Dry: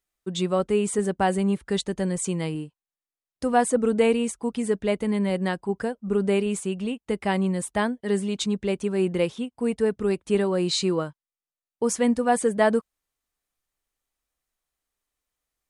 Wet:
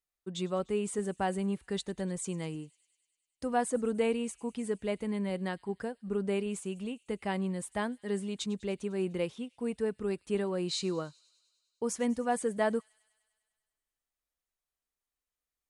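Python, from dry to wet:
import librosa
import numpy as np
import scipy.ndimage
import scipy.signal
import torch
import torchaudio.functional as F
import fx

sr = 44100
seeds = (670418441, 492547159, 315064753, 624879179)

y = fx.echo_wet_highpass(x, sr, ms=100, feedback_pct=71, hz=3500.0, wet_db=-20.0)
y = y * 10.0 ** (-9.0 / 20.0)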